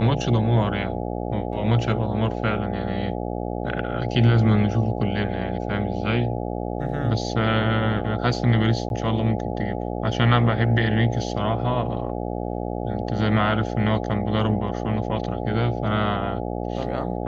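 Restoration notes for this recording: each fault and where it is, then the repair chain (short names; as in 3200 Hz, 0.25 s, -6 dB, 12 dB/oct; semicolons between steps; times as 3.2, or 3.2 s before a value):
buzz 60 Hz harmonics 14 -28 dBFS
8.89–8.9 gap 11 ms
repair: de-hum 60 Hz, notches 14; interpolate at 8.89, 11 ms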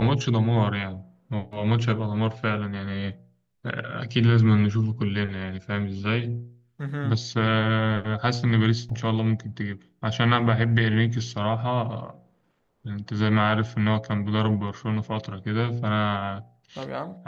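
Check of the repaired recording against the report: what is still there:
none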